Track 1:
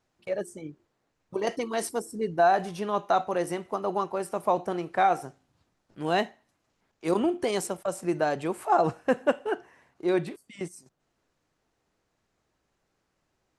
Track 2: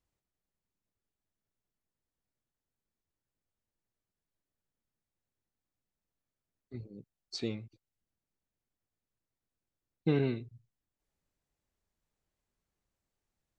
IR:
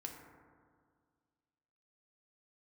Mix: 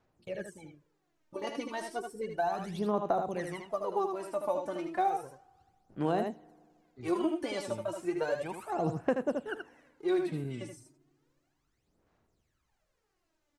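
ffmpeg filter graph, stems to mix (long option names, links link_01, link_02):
-filter_complex "[0:a]aphaser=in_gain=1:out_gain=1:delay=3.5:decay=0.76:speed=0.33:type=sinusoidal,volume=-8.5dB,asplit=3[link_01][link_02][link_03];[link_02]volume=-23dB[link_04];[link_03]volume=-6dB[link_05];[1:a]acrossover=split=290[link_06][link_07];[link_07]acompressor=threshold=-41dB:ratio=6[link_08];[link_06][link_08]amix=inputs=2:normalize=0,adelay=250,volume=-5.5dB,asplit=2[link_09][link_10];[link_10]volume=-20.5dB[link_11];[2:a]atrim=start_sample=2205[link_12];[link_04][link_11]amix=inputs=2:normalize=0[link_13];[link_13][link_12]afir=irnorm=-1:irlink=0[link_14];[link_05]aecho=0:1:77:1[link_15];[link_01][link_09][link_14][link_15]amix=inputs=4:normalize=0,acrossover=split=720|5300[link_16][link_17][link_18];[link_16]acompressor=threshold=-28dB:ratio=4[link_19];[link_17]acompressor=threshold=-38dB:ratio=4[link_20];[link_18]acompressor=threshold=-57dB:ratio=4[link_21];[link_19][link_20][link_21]amix=inputs=3:normalize=0"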